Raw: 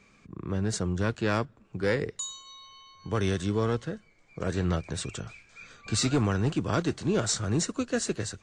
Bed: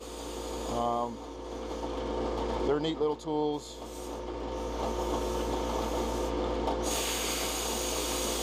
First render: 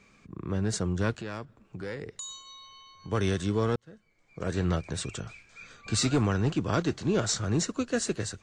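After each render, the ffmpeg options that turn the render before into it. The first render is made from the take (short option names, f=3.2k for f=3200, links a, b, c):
-filter_complex "[0:a]asettb=1/sr,asplit=3[a][b][c];[a]atrim=end=1.154[d];[b]atrim=start=1.15:end=3.12,asetpts=PTS-STARTPTS,afade=t=in:d=0.004:c=qsin,afade=t=out:st=1.966:d=0.004:c=qsin,acompressor=threshold=-36dB:ratio=3:attack=3.2:release=140:knee=1:detection=peak[e];[c]atrim=start=3.116[f];[d][e]acrossfade=d=0.004:c1=hsin:c2=qsin[g];[g][f]acrossfade=d=0.004:c1=qsin:c2=hsin,asettb=1/sr,asplit=3[h][i][j];[h]atrim=end=6.254[k];[i]atrim=start=6.25:end=7.87,asetpts=PTS-STARTPTS,afade=t=in:d=0.004:c=qsin,afade=t=out:st=1.616:d=0.004:c=qsin,equalizer=f=8.7k:w=5.5:g=-8.5[l];[j]atrim=start=7.866[m];[k][l]acrossfade=d=0.004:c1=hsin:c2=qsin[n];[n][m]acrossfade=d=0.004:c1=qsin:c2=hsin,asplit=2[o][p];[o]atrim=end=3.76,asetpts=PTS-STARTPTS,afade=t=out:st=3.756:d=0.004:c=hsin[q];[p]atrim=start=3.76,asetpts=PTS-STARTPTS,afade=t=in:d=0.83[r];[q][r]concat=n=2:v=0:a=1"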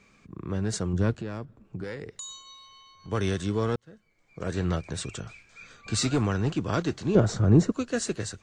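-filter_complex "[0:a]asettb=1/sr,asplit=3[a][b][c];[a]atrim=end=0.934[d];[b]atrim=start=0.93:end=1.84,asetpts=PTS-STARTPTS,afade=t=in:d=0.004:c=qsin,afade=t=out:st=0.906:d=0.004:c=qsin,tiltshelf=f=660:g=5[e];[c]atrim=start=1.836[f];[d][e]acrossfade=d=0.004:c1=hsin:c2=qsin[g];[g][f]acrossfade=d=0.004:c1=qsin:c2=hsin,asettb=1/sr,asplit=3[h][i][j];[h]atrim=end=2.544[k];[i]atrim=start=2.54:end=3.08,asetpts=PTS-STARTPTS,afade=t=in:d=0.004:c=qsin,afade=t=out:st=0.536:d=0.004:c=qsin,aeval=exprs='(tanh(50.1*val(0)+0.35)-tanh(0.35))/50.1':c=same[l];[j]atrim=start=3.076[m];[k][l]acrossfade=d=0.004:c1=hsin:c2=qsin[n];[n][m]acrossfade=d=0.004:c1=qsin:c2=hsin,asettb=1/sr,asplit=3[o][p][q];[o]atrim=end=7.154[r];[p]atrim=start=7.15:end=7.72,asetpts=PTS-STARTPTS,afade=t=in:d=0.004:c=qsin,afade=t=out:st=0.566:d=0.004:c=qsin,tiltshelf=f=1.3k:g=10[s];[q]atrim=start=7.716[t];[r][s]acrossfade=d=0.004:c1=hsin:c2=qsin[u];[u][t]acrossfade=d=0.004:c1=qsin:c2=hsin"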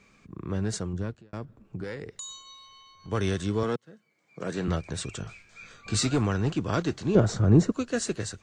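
-filter_complex "[0:a]asettb=1/sr,asplit=3[a][b][c];[a]atrim=end=3.634[d];[b]atrim=start=3.63:end=4.68,asetpts=PTS-STARTPTS,afade=t=in:d=0.004:c=qsin,afade=t=out:st=1.046:d=0.004:c=qsin,highpass=f=140:w=0.5412,highpass=f=140:w=1.3066[e];[c]atrim=start=4.676[f];[d][e]acrossfade=d=0.004:c1=hsin:c2=qsin[g];[g][f]acrossfade=d=0.004:c1=qsin:c2=hsin,asettb=1/sr,asplit=3[h][i][j];[h]atrim=end=5.184[k];[i]atrim=start=5.18:end=6.01,asetpts=PTS-STARTPTS,afade=t=in:d=0.004:c=qsin,afade=t=out:st=0.826:d=0.004:c=qsin,asplit=2[l][m];[m]adelay=20,volume=-7dB[n];[l][n]amix=inputs=2:normalize=0,atrim=end_sample=36603[o];[j]atrim=start=6.006[p];[k][o]acrossfade=d=0.004:c1=hsin:c2=qsin[q];[q][p]acrossfade=d=0.004:c1=qsin:c2=hsin,asplit=2[r][s];[r]atrim=end=1.33,asetpts=PTS-STARTPTS,afade=t=out:st=0.63:d=0.7[t];[s]atrim=start=1.33,asetpts=PTS-STARTPTS,afade=t=in:d=0.004:c=hsin[u];[t][u]concat=n=2:v=0:a=1"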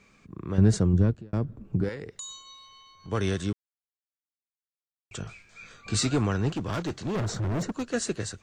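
-filter_complex "[0:a]asettb=1/sr,asplit=3[a][b][c];[a]atrim=end=0.584[d];[b]atrim=start=0.58:end=1.89,asetpts=PTS-STARTPTS,afade=t=in:d=0.004:c=qsin,afade=t=out:st=1.306:d=0.004:c=qsin,lowshelf=f=500:g=12[e];[c]atrim=start=1.886[f];[d][e]acrossfade=d=0.004:c1=hsin:c2=qsin[g];[g][f]acrossfade=d=0.004:c1=qsin:c2=hsin,asettb=1/sr,asplit=3[h][i][j];[h]atrim=end=6.514[k];[i]atrim=start=6.51:end=7.94,asetpts=PTS-STARTPTS,afade=t=in:d=0.004:c=qsin,afade=t=out:st=1.426:d=0.004:c=qsin,asoftclip=type=hard:threshold=-26dB[l];[j]atrim=start=7.936[m];[k][l]acrossfade=d=0.004:c1=hsin:c2=qsin[n];[n][m]acrossfade=d=0.004:c1=qsin:c2=hsin,asplit=3[o][p][q];[o]atrim=end=3.53,asetpts=PTS-STARTPTS,afade=t=out:st=3.526:d=0.004:c=hsin[r];[p]atrim=start=3.53:end=5.11,asetpts=PTS-STARTPTS,volume=0[s];[q]atrim=start=5.11,asetpts=PTS-STARTPTS,afade=t=in:d=0.004:c=hsin[t];[r][s][t]concat=n=3:v=0:a=1"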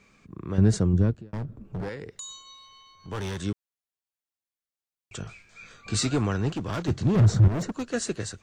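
-filter_complex "[0:a]asettb=1/sr,asplit=3[a][b][c];[a]atrim=end=1.284[d];[b]atrim=start=1.28:end=3.41,asetpts=PTS-STARTPTS,afade=t=in:d=0.004:c=qsin,afade=t=out:st=2.126:d=0.004:c=qsin,asoftclip=type=hard:threshold=-29dB[e];[c]atrim=start=3.406[f];[d][e]acrossfade=d=0.004:c1=hsin:c2=qsin[g];[g][f]acrossfade=d=0.004:c1=qsin:c2=hsin,asettb=1/sr,asplit=3[h][i][j];[h]atrim=end=6.884[k];[i]atrim=start=6.88:end=7.48,asetpts=PTS-STARTPTS,afade=t=in:d=0.004:c=qsin,afade=t=out:st=0.596:d=0.004:c=qsin,equalizer=f=100:t=o:w=2.6:g=13.5[l];[j]atrim=start=7.476[m];[k][l]acrossfade=d=0.004:c1=hsin:c2=qsin[n];[n][m]acrossfade=d=0.004:c1=qsin:c2=hsin"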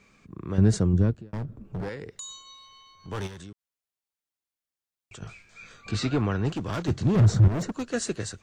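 -filter_complex "[0:a]asplit=3[a][b][c];[a]afade=t=out:st=3.26:d=0.02[d];[b]acompressor=threshold=-42dB:ratio=4:attack=3.2:release=140:knee=1:detection=peak,afade=t=in:st=3.26:d=0.02,afade=t=out:st=5.21:d=0.02[e];[c]afade=t=in:st=5.21:d=0.02[f];[d][e][f]amix=inputs=3:normalize=0,asettb=1/sr,asplit=3[g][h][i];[g]atrim=end=5.914[j];[h]atrim=start=5.91:end=6.45,asetpts=PTS-STARTPTS,afade=t=in:d=0.004:c=qsin,afade=t=out:st=0.536:d=0.004:c=qsin,lowpass=3.8k[k];[i]atrim=start=6.446[l];[j][k]acrossfade=d=0.004:c1=hsin:c2=qsin[m];[m][l]acrossfade=d=0.004:c1=qsin:c2=hsin"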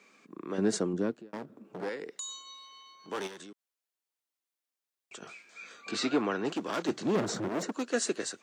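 -af "highpass=f=250:w=0.5412,highpass=f=250:w=1.3066"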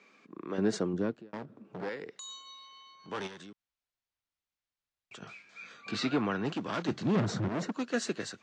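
-af "lowpass=4.9k,asubboost=boost=6:cutoff=140"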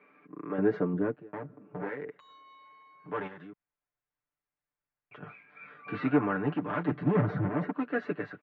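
-af "lowpass=f=2.1k:w=0.5412,lowpass=f=2.1k:w=1.3066,aecho=1:1:6.8:0.93"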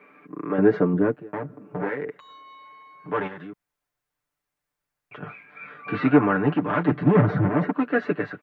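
-af "volume=8.5dB"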